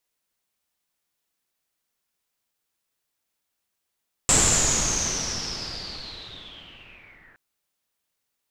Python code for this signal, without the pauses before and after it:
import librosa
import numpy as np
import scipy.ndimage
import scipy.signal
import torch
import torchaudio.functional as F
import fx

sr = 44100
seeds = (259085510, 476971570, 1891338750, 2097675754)

y = fx.riser_noise(sr, seeds[0], length_s=3.07, colour='pink', kind='lowpass', start_hz=7700.0, end_hz=1700.0, q=11.0, swell_db=-37.0, law='linear')